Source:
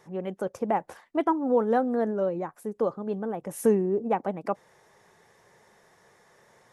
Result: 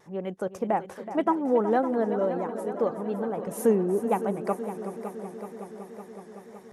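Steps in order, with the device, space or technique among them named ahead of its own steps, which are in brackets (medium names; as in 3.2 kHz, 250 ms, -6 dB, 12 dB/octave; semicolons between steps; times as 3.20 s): multi-head tape echo (multi-head delay 187 ms, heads second and third, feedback 70%, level -12.5 dB; wow and flutter 47 cents)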